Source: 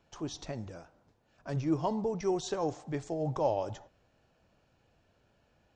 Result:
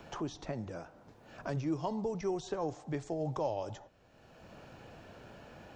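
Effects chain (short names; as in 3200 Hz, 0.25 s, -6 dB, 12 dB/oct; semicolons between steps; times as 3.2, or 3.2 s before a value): three-band squash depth 70%; gain -2.5 dB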